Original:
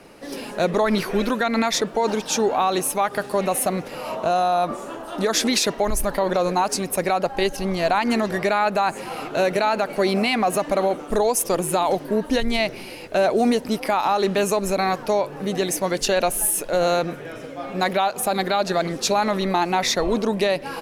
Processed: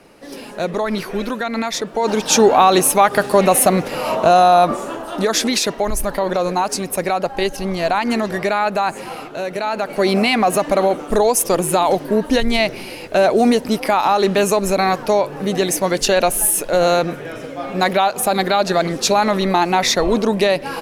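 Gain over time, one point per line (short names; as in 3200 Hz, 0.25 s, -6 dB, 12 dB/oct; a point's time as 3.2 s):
1.85 s -1 dB
2.33 s +9 dB
4.57 s +9 dB
5.51 s +2 dB
9.1 s +2 dB
9.4 s -5 dB
10.12 s +5 dB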